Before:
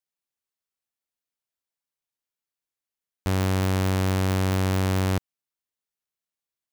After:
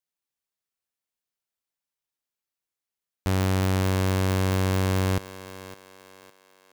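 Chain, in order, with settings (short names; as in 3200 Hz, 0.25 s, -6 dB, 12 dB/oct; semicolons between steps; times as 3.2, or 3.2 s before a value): thinning echo 0.559 s, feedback 43%, high-pass 330 Hz, level -12.5 dB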